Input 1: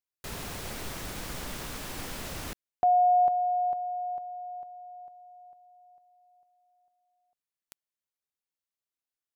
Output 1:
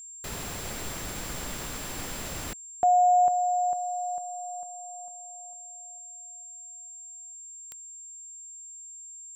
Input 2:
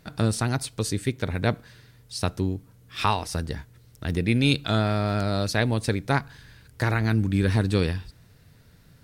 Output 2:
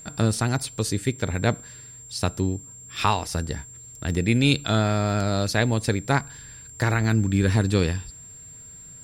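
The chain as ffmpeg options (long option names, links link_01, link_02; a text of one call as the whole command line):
ffmpeg -i in.wav -af "aeval=exprs='val(0)+0.00708*sin(2*PI*7400*n/s)':channel_layout=same,volume=1.5dB" out.wav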